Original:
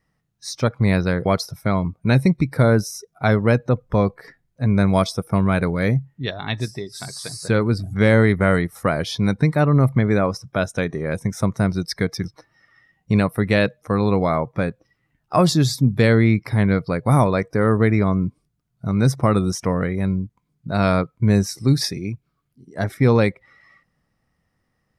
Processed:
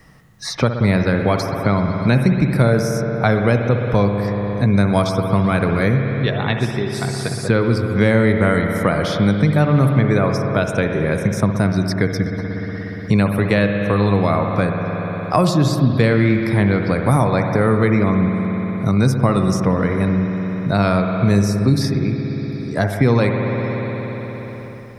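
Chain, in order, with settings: spring tank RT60 2.4 s, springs 59 ms, chirp 70 ms, DRR 4.5 dB; three bands compressed up and down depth 70%; trim +1 dB

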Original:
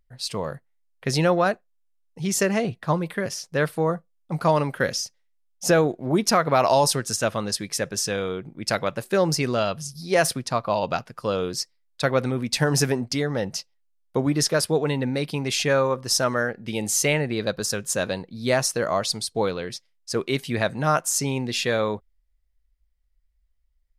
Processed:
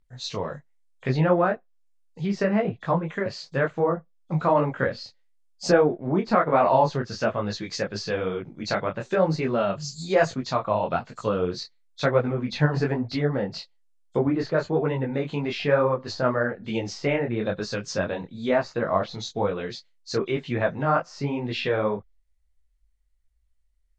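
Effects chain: knee-point frequency compression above 3.2 kHz 1.5:1; low-pass that closes with the level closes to 1.8 kHz, closed at -21 dBFS; 9.20–11.48 s: peaking EQ 7.4 kHz +10.5 dB 1.1 oct; detune thickener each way 37 cents; trim +3.5 dB

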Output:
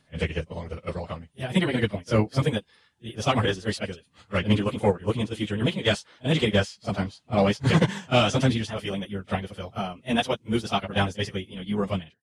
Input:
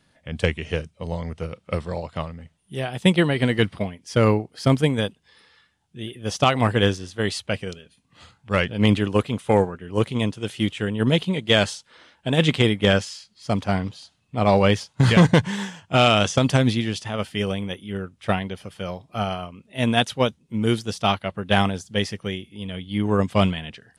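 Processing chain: fade out at the end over 1.10 s; pre-echo 76 ms -22 dB; plain phase-vocoder stretch 0.51×

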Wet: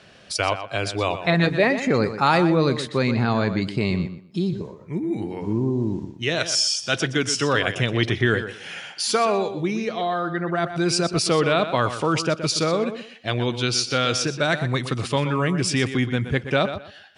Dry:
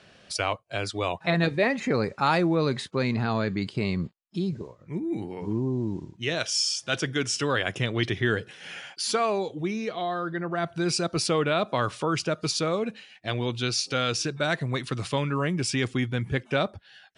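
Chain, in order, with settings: tape echo 122 ms, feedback 24%, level -9.5 dB, low-pass 4.9 kHz; trim +4.5 dB

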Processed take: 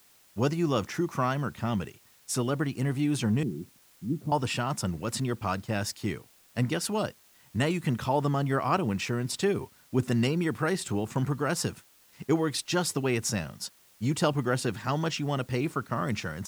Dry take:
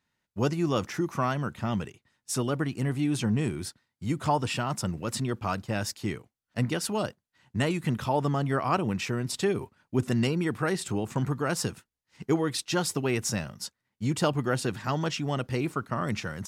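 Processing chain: 3.43–4.32 s: Butterworth band-pass 220 Hz, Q 1; word length cut 10-bit, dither triangular

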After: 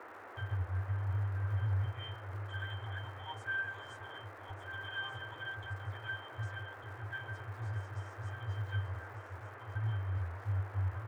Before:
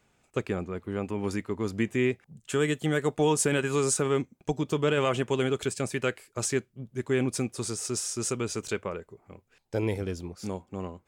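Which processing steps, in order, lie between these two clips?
Chebyshev band-stop 110–940 Hz, order 5; pitch-class resonator G, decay 0.37 s; compressor with a negative ratio -47 dBFS; crackle 280 per s -63 dBFS; treble shelf 2.3 kHz -7.5 dB; delay 1196 ms -9 dB; band noise 300–1700 Hz -65 dBFS; trim +14 dB

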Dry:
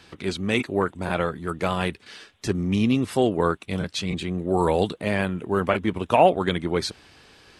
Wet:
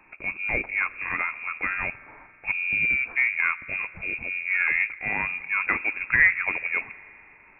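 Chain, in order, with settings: spring tank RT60 2.9 s, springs 41 ms, chirp 20 ms, DRR 17 dB; Chebyshev shaper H 7 -42 dB, 8 -30 dB, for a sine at -3 dBFS; frequency inversion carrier 2.6 kHz; trim -2.5 dB

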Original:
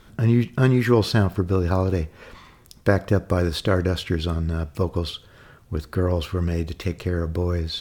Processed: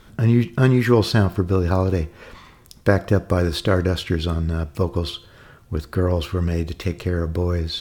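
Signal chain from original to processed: de-hum 345.1 Hz, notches 34; trim +2 dB

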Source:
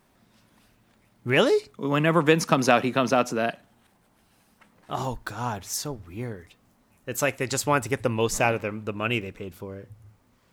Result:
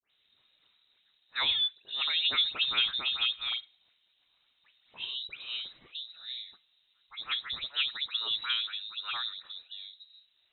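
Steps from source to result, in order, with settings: distance through air 120 m; phase dispersion lows, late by 100 ms, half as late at 1.9 kHz; frequency inversion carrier 3.9 kHz; trim -8 dB

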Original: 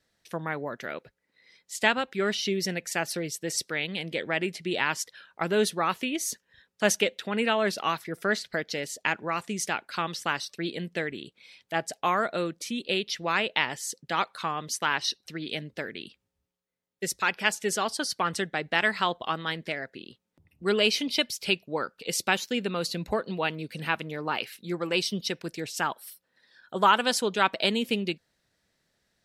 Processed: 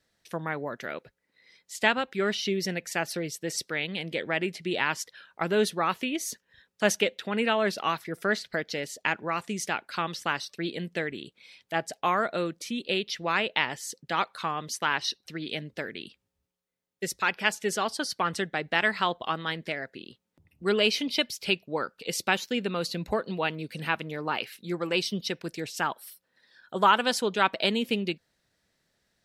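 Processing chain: dynamic bell 8.7 kHz, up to -4 dB, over -45 dBFS, Q 0.74

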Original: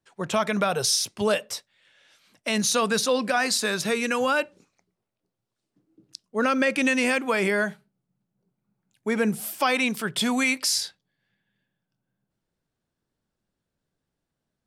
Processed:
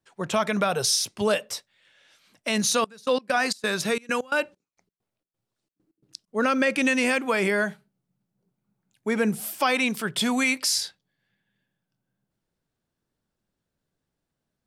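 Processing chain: 2.76–6.27 s: trance gate "x.xxx.x.xx..x.x" 132 bpm -24 dB

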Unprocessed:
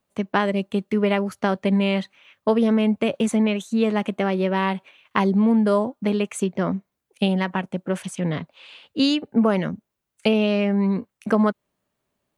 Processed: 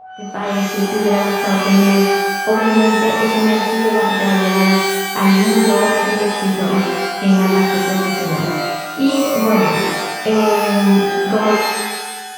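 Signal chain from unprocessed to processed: fade-in on the opening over 0.81 s; treble shelf 3.3 kHz -11 dB; in parallel at -2 dB: compression, threshold -27 dBFS, peak gain reduction 12.5 dB; on the sum: whistle 750 Hz -33 dBFS; pitch-shifted reverb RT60 1.2 s, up +12 st, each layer -2 dB, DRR -7 dB; trim -5 dB

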